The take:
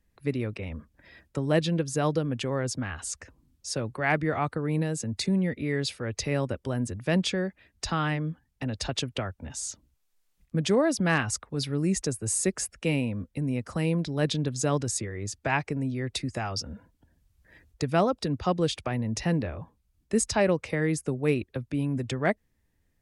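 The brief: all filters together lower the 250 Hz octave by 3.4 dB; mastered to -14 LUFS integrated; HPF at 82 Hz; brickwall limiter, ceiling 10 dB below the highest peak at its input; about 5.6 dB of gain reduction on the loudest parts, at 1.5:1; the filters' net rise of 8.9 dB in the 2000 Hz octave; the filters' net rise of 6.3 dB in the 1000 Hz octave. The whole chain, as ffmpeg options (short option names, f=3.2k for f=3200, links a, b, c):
-af "highpass=82,equalizer=f=250:t=o:g=-5.5,equalizer=f=1k:t=o:g=6.5,equalizer=f=2k:t=o:g=9,acompressor=threshold=-29dB:ratio=1.5,volume=17.5dB,alimiter=limit=-1dB:level=0:latency=1"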